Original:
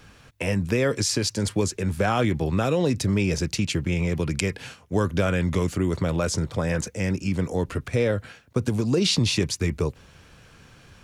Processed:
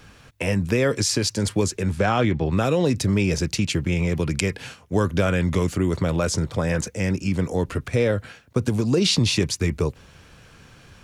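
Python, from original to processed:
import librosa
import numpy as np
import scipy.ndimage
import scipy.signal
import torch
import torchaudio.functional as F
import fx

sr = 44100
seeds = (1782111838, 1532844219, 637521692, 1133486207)

y = fx.lowpass(x, sr, hz=fx.line((1.91, 8700.0), (2.5, 3700.0)), slope=12, at=(1.91, 2.5), fade=0.02)
y = y * 10.0 ** (2.0 / 20.0)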